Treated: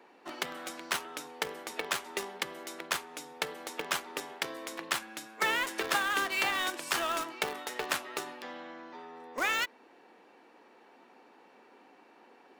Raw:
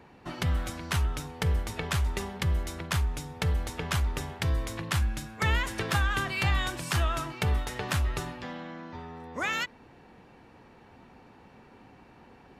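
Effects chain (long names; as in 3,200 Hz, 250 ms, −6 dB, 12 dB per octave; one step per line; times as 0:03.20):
high-pass filter 290 Hz 24 dB per octave
in parallel at −7 dB: bit reduction 5 bits
on the sum: level −2.5 dB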